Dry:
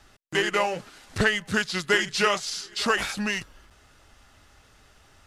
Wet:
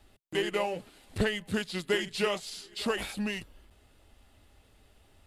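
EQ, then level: bell 140 Hz -12.5 dB 0.22 oct; bell 1400 Hz -11 dB 1.3 oct; bell 5900 Hz -12 dB 0.71 oct; -2.0 dB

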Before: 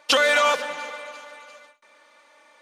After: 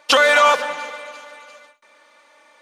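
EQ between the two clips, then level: dynamic EQ 1000 Hz, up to +5 dB, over -33 dBFS, Q 0.91; +2.5 dB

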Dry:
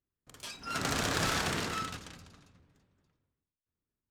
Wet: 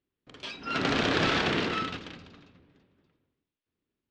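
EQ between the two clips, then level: ladder low-pass 4100 Hz, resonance 25%; bell 330 Hz +11.5 dB 2.2 oct; high shelf 2200 Hz +11 dB; +4.0 dB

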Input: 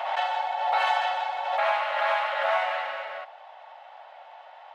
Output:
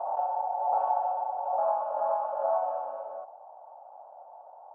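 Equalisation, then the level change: inverse Chebyshev low-pass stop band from 1800 Hz, stop band 40 dB; 0.0 dB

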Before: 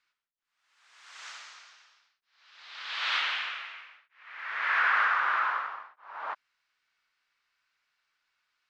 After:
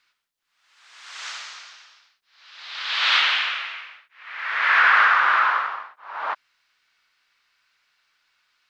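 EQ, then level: bell 4000 Hz +3.5 dB 1.4 oct; +8.5 dB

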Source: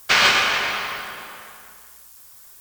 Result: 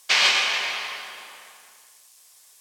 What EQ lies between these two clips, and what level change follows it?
HPF 1100 Hz 6 dB/oct; LPF 9900 Hz 12 dB/oct; bell 1400 Hz -9 dB 0.56 oct; 0.0 dB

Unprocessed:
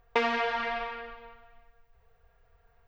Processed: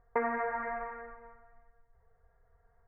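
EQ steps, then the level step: elliptic low-pass 2000 Hz, stop band 40 dB; air absorption 340 m; -2.0 dB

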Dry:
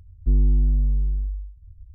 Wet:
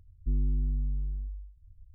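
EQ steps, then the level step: Gaussian blur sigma 24 samples; bell 66 Hz -7 dB 1.9 oct; -4.0 dB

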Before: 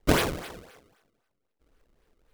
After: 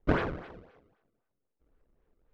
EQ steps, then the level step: dynamic EQ 1500 Hz, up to +6 dB, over -44 dBFS, Q 1.6; tape spacing loss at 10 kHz 40 dB; -3.0 dB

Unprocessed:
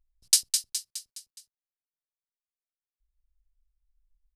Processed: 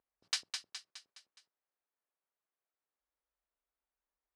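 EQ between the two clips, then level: HPF 360 Hz 12 dB/oct; LPF 1500 Hz 12 dB/oct; +9.0 dB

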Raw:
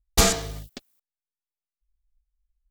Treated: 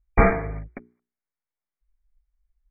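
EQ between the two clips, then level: brick-wall FIR low-pass 2400 Hz; notches 60/120/180/240/300/360/420 Hz; +4.5 dB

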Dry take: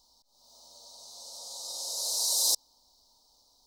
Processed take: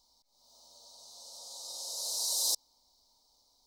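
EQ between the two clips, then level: bell 2200 Hz +14.5 dB 0.31 oct; -4.5 dB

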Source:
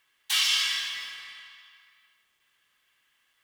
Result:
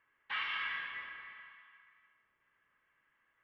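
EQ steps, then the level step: LPF 2000 Hz 24 dB/oct; air absorption 110 m; notch 750 Hz, Q 12; 0.0 dB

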